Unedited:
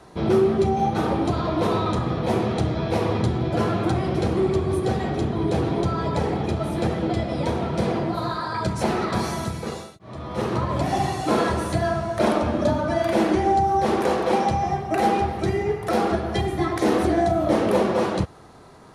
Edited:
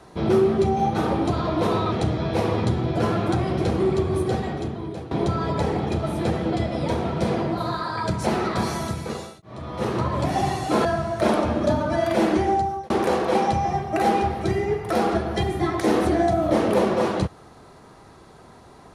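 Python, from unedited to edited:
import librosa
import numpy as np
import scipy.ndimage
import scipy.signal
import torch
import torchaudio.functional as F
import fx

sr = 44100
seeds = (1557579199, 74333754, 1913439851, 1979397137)

y = fx.edit(x, sr, fx.cut(start_s=1.92, length_s=0.57),
    fx.fade_out_to(start_s=4.8, length_s=0.88, floor_db=-16.5),
    fx.cut(start_s=11.42, length_s=0.41),
    fx.fade_out_span(start_s=13.3, length_s=0.58, curve='qsin'), tone=tone)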